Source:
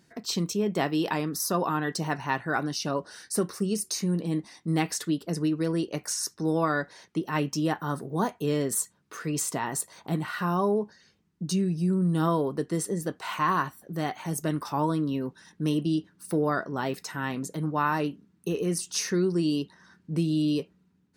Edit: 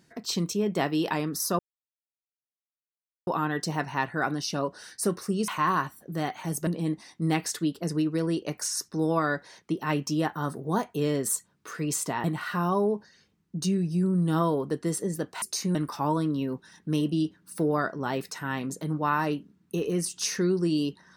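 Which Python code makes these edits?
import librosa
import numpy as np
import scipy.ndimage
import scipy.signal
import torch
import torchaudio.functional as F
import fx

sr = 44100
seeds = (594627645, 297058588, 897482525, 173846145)

y = fx.edit(x, sr, fx.insert_silence(at_s=1.59, length_s=1.68),
    fx.swap(start_s=3.8, length_s=0.33, other_s=13.29, other_length_s=1.19),
    fx.cut(start_s=9.7, length_s=0.41), tone=tone)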